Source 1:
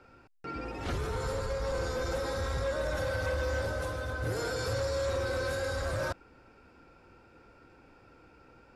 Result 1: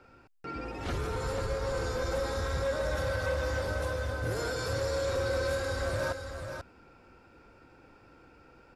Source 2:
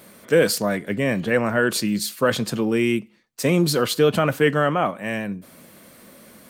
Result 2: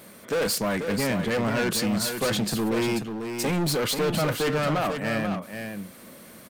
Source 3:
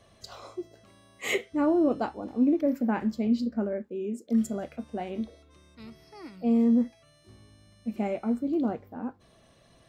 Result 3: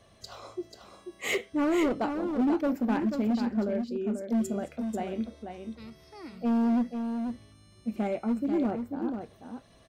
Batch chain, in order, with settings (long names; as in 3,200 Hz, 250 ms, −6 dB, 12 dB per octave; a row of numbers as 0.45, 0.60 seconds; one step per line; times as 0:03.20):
gain into a clipping stage and back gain 22.5 dB
on a send: single-tap delay 488 ms −7 dB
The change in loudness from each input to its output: +0.5, −4.5, −1.0 LU